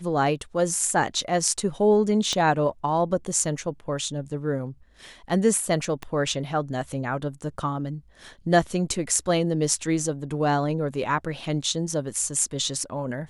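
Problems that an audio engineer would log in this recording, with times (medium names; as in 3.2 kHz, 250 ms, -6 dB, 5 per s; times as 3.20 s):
2.33 s: pop -14 dBFS
6.03 s: pop -19 dBFS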